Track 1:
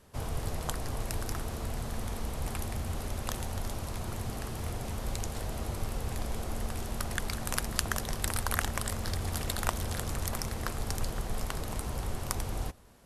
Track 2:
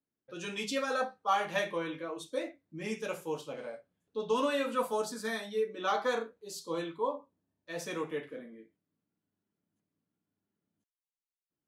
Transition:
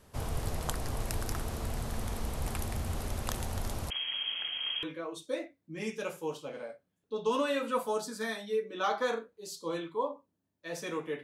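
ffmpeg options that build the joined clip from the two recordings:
-filter_complex "[0:a]asettb=1/sr,asplit=3[a][b][c];[a]atrim=end=3.904[d];[b]atrim=start=3.9:end=4.83,asetpts=PTS-STARTPTS,afade=t=in:d=0.004:c=qsin,afade=t=out:st=0.926:d=0.004:c=qsin,lowpass=f=2.8k:t=q:w=0.5098,lowpass=f=2.8k:t=q:w=0.6013,lowpass=f=2.8k:t=q:w=0.9,lowpass=f=2.8k:t=q:w=2.563,afreqshift=-3300[e];[c]atrim=start=4.826[f];[d][e]acrossfade=d=0.004:c1=hsin:c2=qsin[g];[g][f]acrossfade=d=0.004:c1=qsin:c2=hsin,apad=whole_dur=11.23,atrim=end=11.23,atrim=end=4.832[h];[1:a]atrim=start=1.868:end=8.27[i];[h][i]acrossfade=d=0.004:c1=hsin:c2=hsin"

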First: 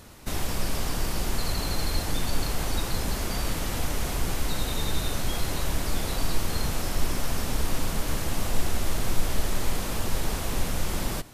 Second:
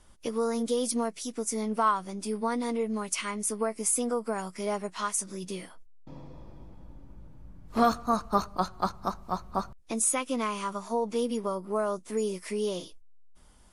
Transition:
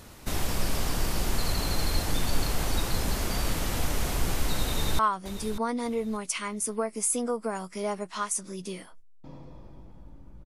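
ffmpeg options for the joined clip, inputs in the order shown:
-filter_complex "[0:a]apad=whole_dur=10.45,atrim=end=10.45,atrim=end=4.992[a];[1:a]atrim=start=1.818:end=7.28[b];[a][b]acrossfade=d=0.004:c1=hsin:c2=hsin,asplit=2[c][d];[d]afade=t=in:st=4.66:d=0.01,afade=t=out:st=4.99:d=0.01,aecho=0:1:590|1180|1770:0.266073|0.0665181|0.0166295[e];[c][e]amix=inputs=2:normalize=0"

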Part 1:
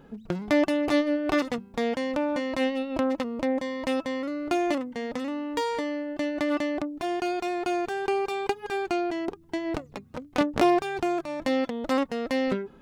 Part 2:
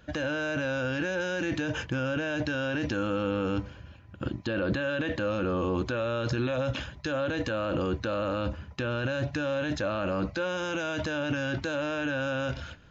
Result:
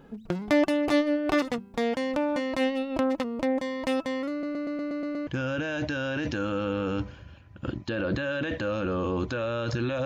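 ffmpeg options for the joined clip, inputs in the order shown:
-filter_complex "[0:a]apad=whole_dur=10.05,atrim=end=10.05,asplit=8[a][b][c][d][e][f][g][h];[a]atrim=end=4.432[i];[b]atrim=start=4.308:end=4.432[j];[c]atrim=start=4.308:end=4.432[k];[d]atrim=start=4.308:end=4.432[l];[e]atrim=start=4.308:end=4.432[m];[f]atrim=start=4.308:end=4.432[n];[g]atrim=start=4.308:end=4.432[o];[h]atrim=start=4.308:end=4.432[p];[1:a]atrim=start=1.848:end=6.63[q];[i][j]acrossfade=d=0.004:c1=hsin:c2=hsin[r];[r][k]acrossfade=d=0.004:c1=hsin:c2=hsin[s];[s][l]acrossfade=d=0.004:c1=hsin:c2=hsin[t];[t][m]acrossfade=d=0.004:c1=hsin:c2=hsin[u];[u][n]acrossfade=d=0.004:c1=hsin:c2=hsin[v];[v][o]acrossfade=d=0.004:c1=hsin:c2=hsin[w];[w][p]acrossfade=d=0.004:c1=hsin:c2=hsin[x];[x][q]acrossfade=d=0.004:c1=hsin:c2=hsin"

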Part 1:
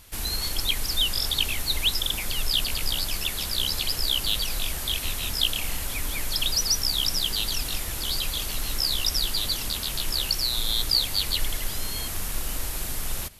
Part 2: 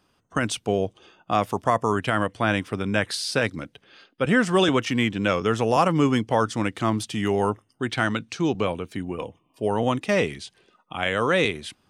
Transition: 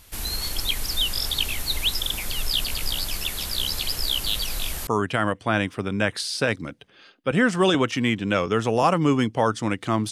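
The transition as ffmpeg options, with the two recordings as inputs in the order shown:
-filter_complex "[0:a]apad=whole_dur=10.11,atrim=end=10.11,atrim=end=4.872[a];[1:a]atrim=start=1.808:end=7.05[b];[a][b]acrossfade=d=0.004:c1=hsin:c2=hsin"

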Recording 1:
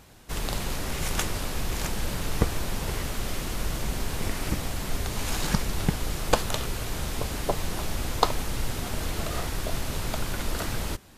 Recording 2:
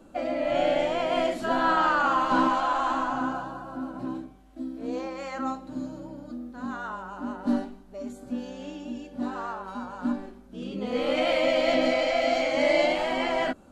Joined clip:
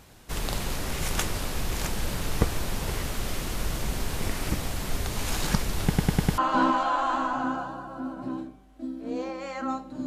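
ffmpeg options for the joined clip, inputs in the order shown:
-filter_complex "[0:a]apad=whole_dur=10.06,atrim=end=10.06,asplit=5[a][b][c][d][e];[a]atrim=end=5.982[f];[b]atrim=start=5.878:end=5.982[g];[c]atrim=start=5.878:end=5.982[h];[d]atrim=start=5.878:end=5.982[i];[e]atrim=start=5.878:end=5.982[j];[1:a]atrim=start=2.148:end=5.83[k];[f][g]acrossfade=d=0.004:c1=hsin:c2=hsin[l];[l][h]acrossfade=d=0.004:c1=hsin:c2=hsin[m];[m][i]acrossfade=d=0.004:c1=hsin:c2=hsin[n];[n][j]acrossfade=d=0.004:c1=hsin:c2=hsin[o];[o][k]acrossfade=d=0.004:c1=hsin:c2=hsin"

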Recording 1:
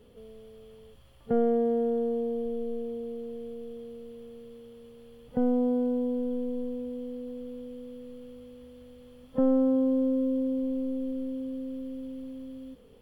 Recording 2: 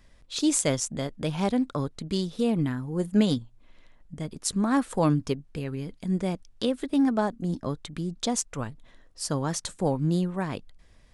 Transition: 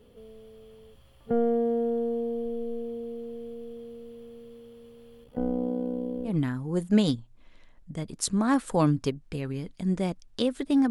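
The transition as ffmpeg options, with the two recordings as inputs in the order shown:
-filter_complex "[0:a]asettb=1/sr,asplit=3[a][b][c];[a]atrim=end=5.244[d];[b]atrim=start=5.24:end=6.34,asetpts=PTS-STARTPTS,afade=t=in:d=0.004:c=qsin,afade=t=out:st=1.096:d=0.004:c=qsin,tremolo=f=63:d=0.788[e];[c]atrim=start=6.336[f];[d][e]acrossfade=d=0.004:c1=hsin:c2=qsin[g];[g][f]acrossfade=d=0.004:c1=qsin:c2=hsin,apad=whole_dur=10.9,atrim=end=10.9,atrim=end=6.34,asetpts=PTS-STARTPTS[h];[1:a]atrim=start=2.47:end=7.13,asetpts=PTS-STARTPTS[i];[h][i]acrossfade=d=0.1:c1=tri:c2=tri"

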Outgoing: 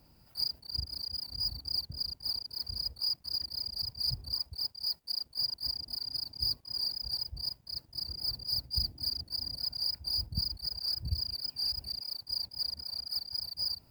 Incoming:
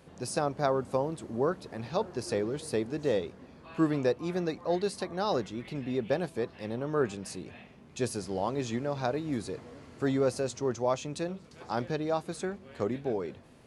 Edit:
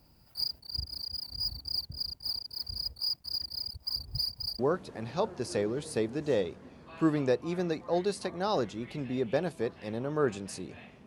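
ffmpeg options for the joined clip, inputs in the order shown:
-filter_complex "[0:a]apad=whole_dur=11.06,atrim=end=11.06,asplit=2[a][b];[a]atrim=end=3.702[c];[b]atrim=start=3.698:end=4.592,asetpts=PTS-STARTPTS,areverse[d];[1:a]atrim=start=1.358:end=7.83[e];[c][d]acrossfade=d=0.004:c1=hsin:c2=hsin[f];[f][e]acrossfade=d=0.004:c1=hsin:c2=hsin"

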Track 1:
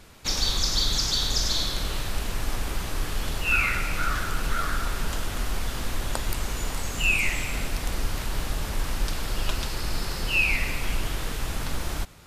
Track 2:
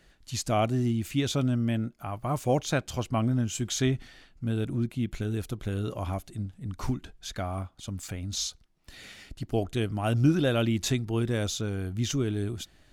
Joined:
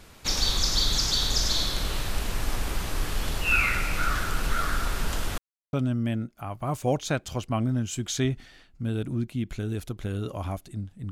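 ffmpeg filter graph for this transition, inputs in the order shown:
-filter_complex "[0:a]apad=whole_dur=11.11,atrim=end=11.11,asplit=2[a][b];[a]atrim=end=5.38,asetpts=PTS-STARTPTS,afade=t=out:st=5.376:d=0.004:c=hsin[c];[b]atrim=start=5.38:end=5.73,asetpts=PTS-STARTPTS,volume=0[d];[1:a]atrim=start=1.35:end=6.73,asetpts=PTS-STARTPTS,afade=t=in:d=0.004:c=hsin[e];[c][d][e]concat=n=3:v=0:a=1"

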